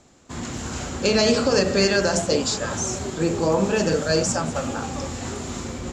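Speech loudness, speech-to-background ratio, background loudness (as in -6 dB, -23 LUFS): -22.0 LUFS, 8.5 dB, -30.5 LUFS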